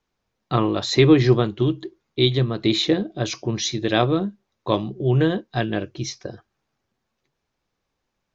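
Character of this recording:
background noise floor −78 dBFS
spectral slope −5.5 dB per octave

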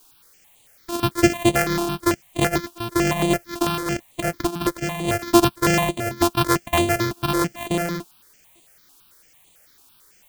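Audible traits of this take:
a buzz of ramps at a fixed pitch in blocks of 128 samples
tremolo triangle 0.96 Hz, depth 50%
a quantiser's noise floor 10 bits, dither triangular
notches that jump at a steady rate 9 Hz 530–5,300 Hz

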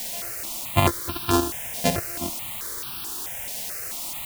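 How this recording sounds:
a buzz of ramps at a fixed pitch in blocks of 128 samples
tremolo saw up 10 Hz, depth 50%
a quantiser's noise floor 6 bits, dither triangular
notches that jump at a steady rate 4.6 Hz 340–2,000 Hz

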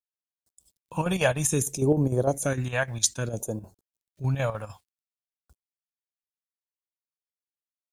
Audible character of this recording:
a quantiser's noise floor 12 bits, dither none
phaser sweep stages 2, 0.61 Hz, lowest notch 330–2,500 Hz
chopped level 6.6 Hz, depth 60%, duty 70%

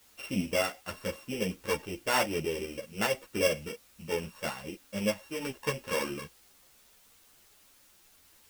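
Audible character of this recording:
a buzz of ramps at a fixed pitch in blocks of 16 samples
tremolo saw up 4.9 Hz, depth 40%
a quantiser's noise floor 10 bits, dither triangular
a shimmering, thickened sound

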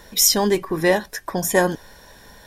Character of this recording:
background noise floor −49 dBFS
spectral slope −3.0 dB per octave

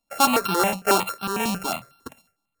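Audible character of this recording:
a buzz of ramps at a fixed pitch in blocks of 32 samples
notches that jump at a steady rate 11 Hz 410–2,000 Hz

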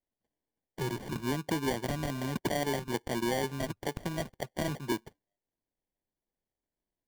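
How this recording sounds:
aliases and images of a low sample rate 1,300 Hz, jitter 0%

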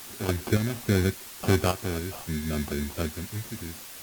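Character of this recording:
aliases and images of a low sample rate 1,900 Hz, jitter 0%
sample-and-hold tremolo, depth 90%
a quantiser's noise floor 8 bits, dither triangular
AAC

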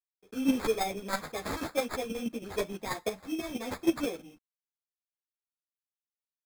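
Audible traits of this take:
aliases and images of a low sample rate 2,900 Hz, jitter 0%
chopped level 6.2 Hz, depth 60%, duty 10%
a quantiser's noise floor 12 bits, dither none
a shimmering, thickened sound

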